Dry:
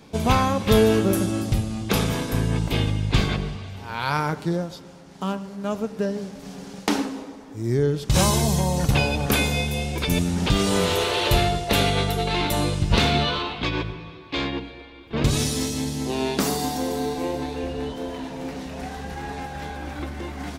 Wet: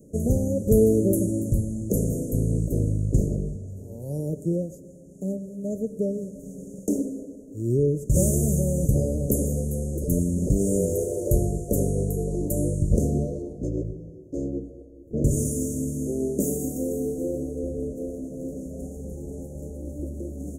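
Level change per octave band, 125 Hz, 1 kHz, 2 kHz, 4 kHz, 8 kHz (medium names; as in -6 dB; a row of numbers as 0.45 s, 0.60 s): -0.5 dB, under -20 dB, under -40 dB, under -30 dB, -2.0 dB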